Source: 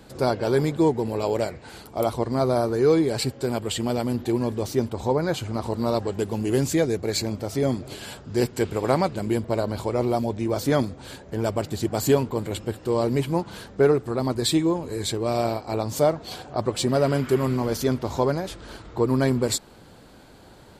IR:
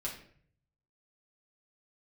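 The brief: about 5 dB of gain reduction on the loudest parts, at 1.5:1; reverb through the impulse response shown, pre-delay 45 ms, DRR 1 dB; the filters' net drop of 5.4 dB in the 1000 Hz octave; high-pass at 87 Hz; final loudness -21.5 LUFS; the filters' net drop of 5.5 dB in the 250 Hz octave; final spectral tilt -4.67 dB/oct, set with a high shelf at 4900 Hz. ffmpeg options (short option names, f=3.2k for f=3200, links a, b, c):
-filter_complex "[0:a]highpass=87,equalizer=f=250:t=o:g=-7,equalizer=f=1k:t=o:g=-7.5,highshelf=f=4.9k:g=6,acompressor=threshold=-31dB:ratio=1.5,asplit=2[a][b];[1:a]atrim=start_sample=2205,adelay=45[c];[b][c]afir=irnorm=-1:irlink=0,volume=-2dB[d];[a][d]amix=inputs=2:normalize=0,volume=6.5dB"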